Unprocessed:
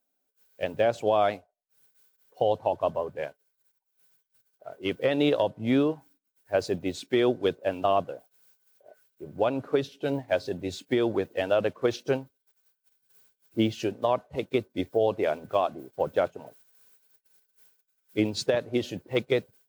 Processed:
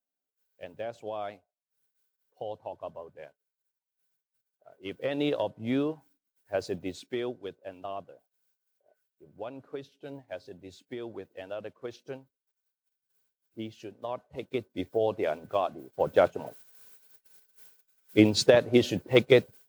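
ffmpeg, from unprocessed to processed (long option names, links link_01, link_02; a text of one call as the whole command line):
ffmpeg -i in.wav -af "volume=14.5dB,afade=type=in:start_time=4.7:duration=0.49:silence=0.398107,afade=type=out:start_time=6.85:duration=0.56:silence=0.354813,afade=type=in:start_time=13.89:duration=1.09:silence=0.281838,afade=type=in:start_time=15.9:duration=0.47:silence=0.375837" out.wav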